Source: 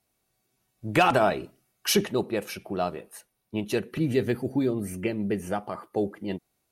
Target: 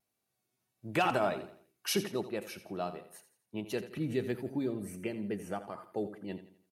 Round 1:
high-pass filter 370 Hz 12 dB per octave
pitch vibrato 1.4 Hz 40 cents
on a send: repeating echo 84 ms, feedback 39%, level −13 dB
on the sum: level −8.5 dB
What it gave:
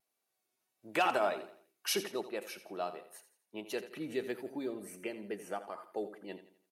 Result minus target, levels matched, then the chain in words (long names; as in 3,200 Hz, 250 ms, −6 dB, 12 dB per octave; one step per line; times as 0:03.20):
125 Hz band −12.5 dB
high-pass filter 100 Hz 12 dB per octave
pitch vibrato 1.4 Hz 40 cents
on a send: repeating echo 84 ms, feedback 39%, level −13 dB
on the sum: level −8.5 dB